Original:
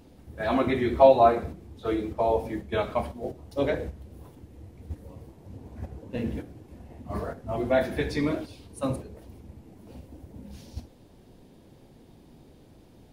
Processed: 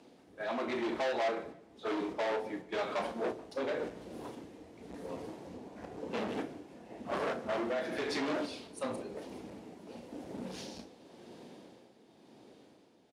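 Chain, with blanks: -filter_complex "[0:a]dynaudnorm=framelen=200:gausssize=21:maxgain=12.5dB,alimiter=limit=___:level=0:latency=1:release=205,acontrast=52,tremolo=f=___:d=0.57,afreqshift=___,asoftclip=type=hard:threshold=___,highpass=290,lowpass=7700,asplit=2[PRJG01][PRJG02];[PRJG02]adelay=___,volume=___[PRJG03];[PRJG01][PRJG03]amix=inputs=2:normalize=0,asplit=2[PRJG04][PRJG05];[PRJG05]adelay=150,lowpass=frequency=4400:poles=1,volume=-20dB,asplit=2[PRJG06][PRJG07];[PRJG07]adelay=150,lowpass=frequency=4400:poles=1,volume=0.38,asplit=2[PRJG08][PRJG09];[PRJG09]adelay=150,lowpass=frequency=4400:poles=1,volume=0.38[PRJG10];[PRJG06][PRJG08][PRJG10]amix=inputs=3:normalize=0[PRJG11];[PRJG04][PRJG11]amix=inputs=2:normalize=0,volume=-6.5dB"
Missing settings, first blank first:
-13dB, 0.96, -16, -23.5dB, 34, -10.5dB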